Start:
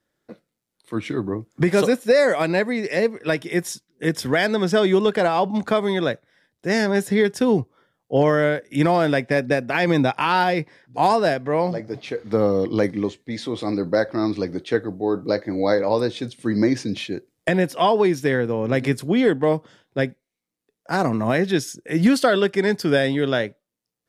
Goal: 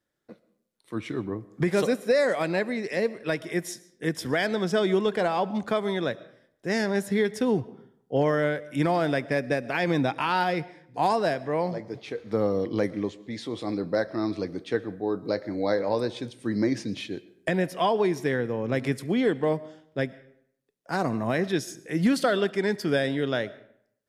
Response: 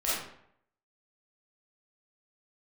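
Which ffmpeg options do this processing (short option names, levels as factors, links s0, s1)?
-filter_complex "[0:a]asplit=2[s0][s1];[1:a]atrim=start_sample=2205,adelay=71[s2];[s1][s2]afir=irnorm=-1:irlink=0,volume=0.0422[s3];[s0][s3]amix=inputs=2:normalize=0,volume=0.501"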